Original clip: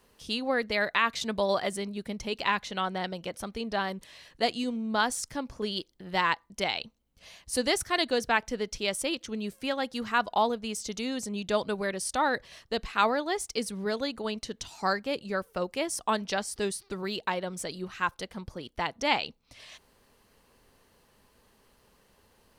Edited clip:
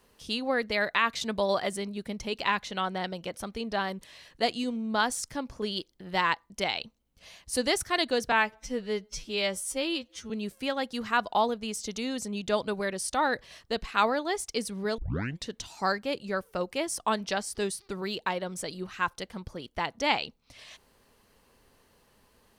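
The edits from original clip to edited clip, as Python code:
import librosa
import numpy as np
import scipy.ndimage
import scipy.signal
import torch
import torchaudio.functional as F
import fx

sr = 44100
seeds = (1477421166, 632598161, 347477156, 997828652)

y = fx.edit(x, sr, fx.stretch_span(start_s=8.32, length_s=0.99, factor=2.0),
    fx.tape_start(start_s=13.99, length_s=0.49), tone=tone)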